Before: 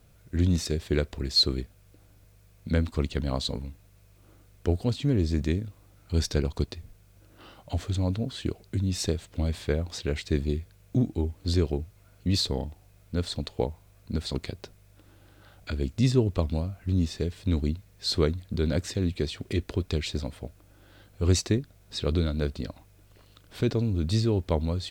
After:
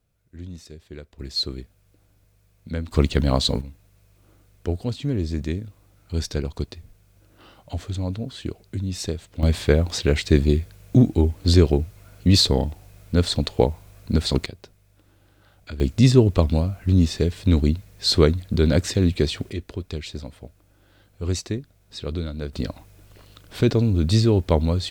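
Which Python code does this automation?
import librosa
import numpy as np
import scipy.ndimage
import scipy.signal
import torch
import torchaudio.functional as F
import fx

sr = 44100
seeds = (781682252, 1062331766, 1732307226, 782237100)

y = fx.gain(x, sr, db=fx.steps((0.0, -13.5), (1.19, -3.5), (2.91, 9.0), (3.61, 0.0), (9.43, 9.5), (14.46, -2.5), (15.8, 8.0), (19.5, -2.5), (22.53, 7.0)))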